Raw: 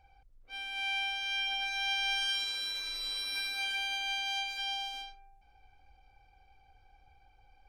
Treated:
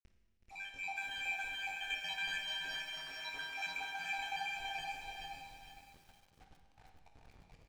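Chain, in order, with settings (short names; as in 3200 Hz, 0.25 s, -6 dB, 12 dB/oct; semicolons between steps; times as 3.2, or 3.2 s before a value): random spectral dropouts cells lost 81%; high shelf 3500 Hz -9 dB; notch 5000 Hz, Q 20; in parallel at -6.5 dB: sample-and-hold 9×; on the sum: AM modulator 95 Hz, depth 30%; bit-crush 10-bit; air absorption 67 m; doubler 22 ms -10 dB; tapped delay 0.374/0.433 s -9/-3 dB; on a send at -3.5 dB: reverb RT60 1.6 s, pre-delay 39 ms; on the sum: lo-fi delay 0.459 s, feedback 35%, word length 10-bit, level -7.5 dB; gain +1 dB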